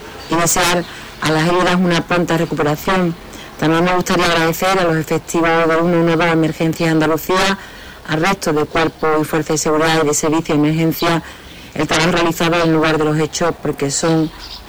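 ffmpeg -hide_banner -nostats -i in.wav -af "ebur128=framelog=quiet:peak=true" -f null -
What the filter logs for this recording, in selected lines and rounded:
Integrated loudness:
  I:         -15.4 LUFS
  Threshold: -25.6 LUFS
Loudness range:
  LRA:         1.6 LU
  Threshold: -35.6 LUFS
  LRA low:   -16.2 LUFS
  LRA high:  -14.6 LUFS
True peak:
  Peak:       -7.8 dBFS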